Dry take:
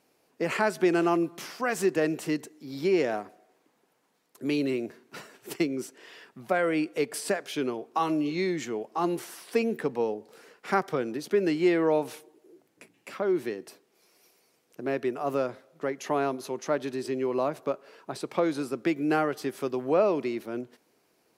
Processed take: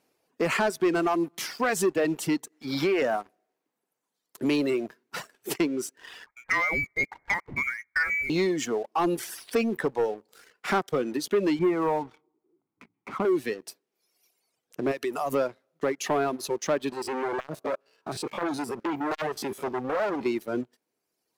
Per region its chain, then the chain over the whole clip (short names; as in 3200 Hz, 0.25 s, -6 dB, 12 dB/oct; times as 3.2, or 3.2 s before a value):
2.52–3.02 bell 1500 Hz +11 dB 2.7 oct + compressor 3:1, threshold -26 dBFS
6.26–8.3 HPF 640 Hz 6 dB/oct + inverted band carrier 2600 Hz
11.59–13.25 LPF 1300 Hz + comb 0.9 ms, depth 67%
14.91–15.33 high shelf 4000 Hz +10.5 dB + compressor 4:1, threshold -31 dBFS
16.92–20.26 stepped spectrum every 50 ms + overloaded stage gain 23.5 dB + core saturation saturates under 840 Hz
whole clip: reverb removal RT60 1.7 s; compressor 1.5:1, threshold -34 dBFS; sample leveller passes 2; gain +1 dB